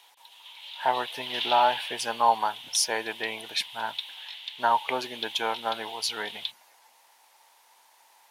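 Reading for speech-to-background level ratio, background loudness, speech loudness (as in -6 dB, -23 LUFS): 8.0 dB, -36.0 LUFS, -28.0 LUFS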